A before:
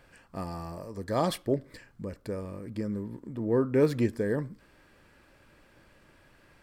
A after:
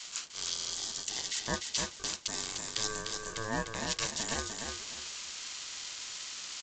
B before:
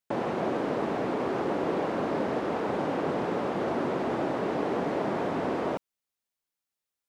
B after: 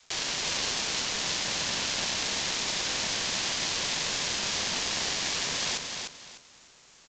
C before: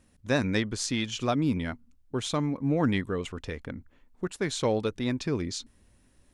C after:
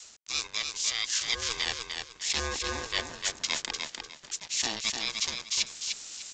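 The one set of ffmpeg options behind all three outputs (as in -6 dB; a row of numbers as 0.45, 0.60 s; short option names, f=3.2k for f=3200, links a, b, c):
-filter_complex "[0:a]highpass=f=110:w=0.5412,highpass=f=110:w=1.3066,aemphasis=mode=production:type=75fm,aexciter=amount=14:drive=8.7:freq=2.4k,areverse,acompressor=threshold=-21dB:ratio=16,areverse,aeval=exprs='val(0)*sin(2*PI*570*n/s)':c=same,aeval=exprs='val(0)*gte(abs(val(0)),0.00841)':c=same,aeval=exprs='val(0)*sin(2*PI*790*n/s)':c=same,adynamicequalizer=threshold=0.00141:dfrequency=220:dqfactor=0.71:tfrequency=220:tqfactor=0.71:attack=5:release=100:ratio=0.375:range=2.5:mode=boostabove:tftype=bell,asplit=2[a][b];[b]aecho=0:1:300|600|900:0.562|0.146|0.038[c];[a][c]amix=inputs=2:normalize=0,aresample=16000,aresample=44100"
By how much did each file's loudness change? -4.0, +1.5, -1.0 LU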